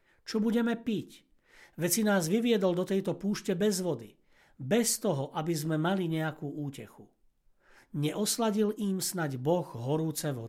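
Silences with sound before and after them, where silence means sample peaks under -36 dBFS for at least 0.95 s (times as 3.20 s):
6.83–7.94 s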